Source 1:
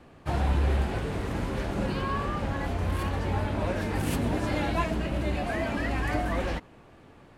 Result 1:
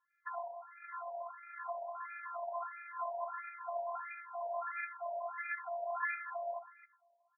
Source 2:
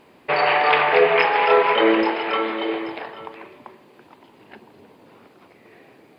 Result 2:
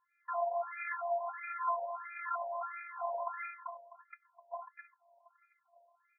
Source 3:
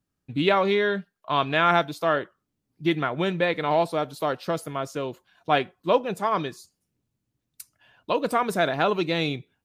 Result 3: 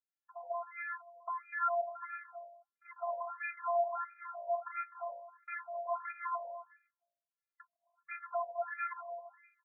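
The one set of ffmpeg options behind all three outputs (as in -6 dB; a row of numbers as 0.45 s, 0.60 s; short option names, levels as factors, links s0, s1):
-filter_complex "[0:a]agate=range=0.0708:threshold=0.00562:ratio=16:detection=peak,equalizer=f=220:w=1:g=8.5,bandreject=f=58.47:t=h:w=4,bandreject=f=116.94:t=h:w=4,bandreject=f=175.41:t=h:w=4,bandreject=f=233.88:t=h:w=4,bandreject=f=292.35:t=h:w=4,bandreject=f=350.82:t=h:w=4,bandreject=f=409.29:t=h:w=4,bandreject=f=467.76:t=h:w=4,bandreject=f=526.23:t=h:w=4,bandreject=f=584.7:t=h:w=4,bandreject=f=643.17:t=h:w=4,bandreject=f=701.64:t=h:w=4,acompressor=threshold=0.0282:ratio=2,alimiter=level_in=1.5:limit=0.0631:level=0:latency=1:release=375,volume=0.668,dynaudnorm=f=490:g=9:m=1.88,asoftclip=type=tanh:threshold=0.0158,afftfilt=real='hypot(re,im)*cos(PI*b)':imag='0':win_size=512:overlap=0.75,acrossover=split=610[s0][s1];[s0]aeval=exprs='val(0)*(1-0.7/2+0.7/2*cos(2*PI*1.4*n/s))':c=same[s2];[s1]aeval=exprs='val(0)*(1-0.7/2-0.7/2*cos(2*PI*1.4*n/s))':c=same[s3];[s2][s3]amix=inputs=2:normalize=0,asplit=2[s4][s5];[s5]aecho=0:1:257:0.2[s6];[s4][s6]amix=inputs=2:normalize=0,afftfilt=real='re*between(b*sr/1024,690*pow(1800/690,0.5+0.5*sin(2*PI*1.5*pts/sr))/1.41,690*pow(1800/690,0.5+0.5*sin(2*PI*1.5*pts/sr))*1.41)':imag='im*between(b*sr/1024,690*pow(1800/690,0.5+0.5*sin(2*PI*1.5*pts/sr))/1.41,690*pow(1800/690,0.5+0.5*sin(2*PI*1.5*pts/sr))*1.41)':win_size=1024:overlap=0.75,volume=5.96"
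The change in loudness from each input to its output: -12.0 LU, -20.5 LU, -14.0 LU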